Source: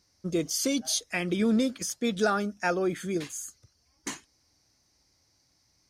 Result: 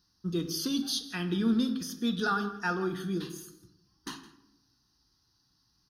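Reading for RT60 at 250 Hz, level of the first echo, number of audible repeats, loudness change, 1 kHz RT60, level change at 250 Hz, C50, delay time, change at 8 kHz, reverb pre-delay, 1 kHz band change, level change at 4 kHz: 1.1 s, -18.5 dB, 1, -2.5 dB, 0.75 s, -1.5 dB, 10.5 dB, 0.164 s, -9.0 dB, 10 ms, -2.0 dB, -0.5 dB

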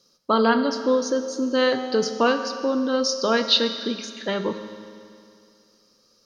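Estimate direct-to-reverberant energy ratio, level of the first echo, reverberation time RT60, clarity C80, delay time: 7.5 dB, none, 2.4 s, 9.5 dB, none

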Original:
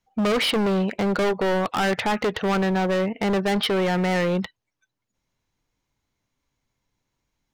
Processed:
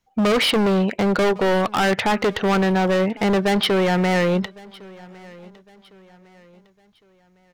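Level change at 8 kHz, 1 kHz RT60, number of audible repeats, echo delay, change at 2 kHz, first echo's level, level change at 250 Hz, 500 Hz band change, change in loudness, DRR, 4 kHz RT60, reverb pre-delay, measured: +3.5 dB, none, 2, 1.107 s, +3.5 dB, -23.0 dB, +3.5 dB, +3.5 dB, +3.5 dB, none, none, none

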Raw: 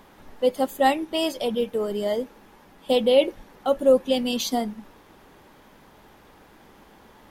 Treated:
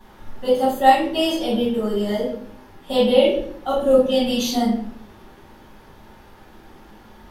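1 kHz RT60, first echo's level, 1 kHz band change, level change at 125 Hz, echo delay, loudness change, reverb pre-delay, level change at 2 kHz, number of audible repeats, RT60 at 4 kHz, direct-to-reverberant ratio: 0.50 s, none, +7.0 dB, n/a, none, +4.0 dB, 4 ms, +4.0 dB, none, 0.45 s, -11.5 dB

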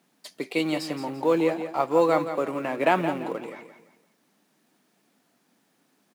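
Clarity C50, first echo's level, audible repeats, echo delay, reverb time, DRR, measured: none, -10.0 dB, 3, 0.171 s, none, none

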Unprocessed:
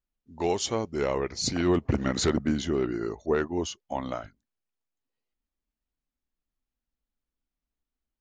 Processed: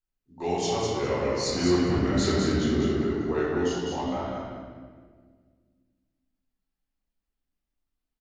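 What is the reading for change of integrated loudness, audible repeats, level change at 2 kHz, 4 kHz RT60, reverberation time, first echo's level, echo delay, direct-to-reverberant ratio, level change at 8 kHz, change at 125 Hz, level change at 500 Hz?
+2.0 dB, 1, +2.0 dB, 1.2 s, 1.7 s, -4.0 dB, 0.203 s, -8.5 dB, -1.0 dB, +3.0 dB, +2.0 dB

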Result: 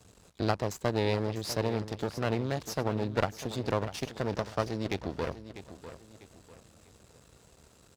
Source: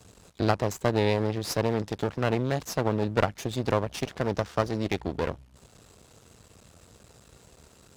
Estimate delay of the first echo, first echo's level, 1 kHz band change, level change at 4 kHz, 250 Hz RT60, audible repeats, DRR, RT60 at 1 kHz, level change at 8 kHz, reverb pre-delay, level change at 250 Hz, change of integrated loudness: 0.647 s, -13.0 dB, -4.5 dB, -2.5 dB, none, 3, none, none, -3.5 dB, none, -4.0 dB, -4.0 dB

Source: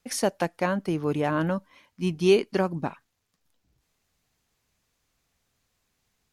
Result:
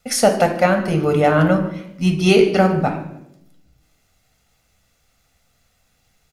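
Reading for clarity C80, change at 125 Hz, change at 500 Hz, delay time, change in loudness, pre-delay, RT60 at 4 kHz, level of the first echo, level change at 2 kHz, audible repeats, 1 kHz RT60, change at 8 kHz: 12.0 dB, +11.5 dB, +9.0 dB, 0.151 s, +9.5 dB, 4 ms, 0.65 s, -19.5 dB, +10.5 dB, 2, 0.65 s, +10.0 dB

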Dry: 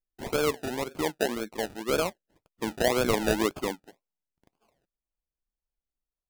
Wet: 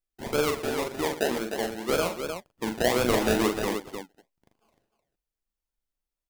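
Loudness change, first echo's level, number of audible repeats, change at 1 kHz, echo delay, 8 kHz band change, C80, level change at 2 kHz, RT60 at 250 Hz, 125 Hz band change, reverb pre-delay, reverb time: +1.5 dB, -6.0 dB, 4, +2.0 dB, 41 ms, +2.0 dB, none, +1.5 dB, none, +2.0 dB, none, none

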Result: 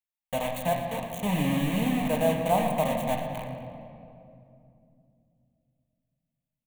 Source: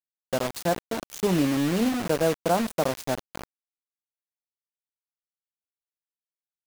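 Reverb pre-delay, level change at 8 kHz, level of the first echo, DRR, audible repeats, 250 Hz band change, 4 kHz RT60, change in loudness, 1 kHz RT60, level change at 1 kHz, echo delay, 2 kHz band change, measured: 4 ms, -5.0 dB, -12.5 dB, 1.5 dB, 1, -2.0 dB, 1.6 s, -1.5 dB, 2.4 s, +1.5 dB, 0.115 s, -1.0 dB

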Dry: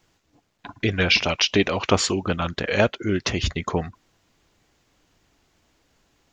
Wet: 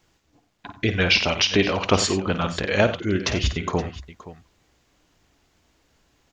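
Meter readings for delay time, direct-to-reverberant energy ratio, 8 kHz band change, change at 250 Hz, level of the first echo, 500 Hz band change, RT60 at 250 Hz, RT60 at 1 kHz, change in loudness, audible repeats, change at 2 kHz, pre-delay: 52 ms, none, +0.5 dB, +0.5 dB, -11.5 dB, +0.5 dB, none, none, +0.5 dB, 3, +0.5 dB, none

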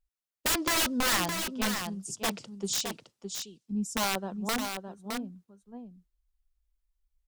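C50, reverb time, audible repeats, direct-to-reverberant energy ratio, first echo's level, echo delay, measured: none, none, 1, none, -6.5 dB, 0.614 s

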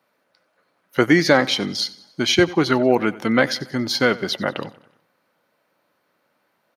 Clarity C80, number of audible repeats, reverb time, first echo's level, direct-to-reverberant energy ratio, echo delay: none, 3, none, -20.0 dB, none, 93 ms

